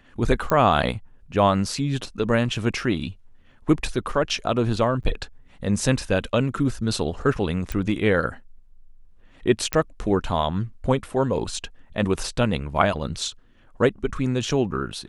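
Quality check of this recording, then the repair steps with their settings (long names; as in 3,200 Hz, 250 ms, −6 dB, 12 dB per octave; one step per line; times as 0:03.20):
0:00.50: click −10 dBFS
0:05.03–0:05.04: drop-out 8.6 ms
0:07.72: click
0:09.73: click −5 dBFS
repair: click removal
repair the gap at 0:05.03, 8.6 ms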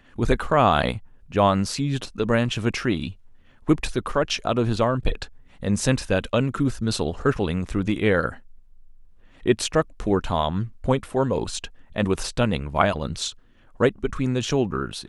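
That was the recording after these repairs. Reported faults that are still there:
none of them is left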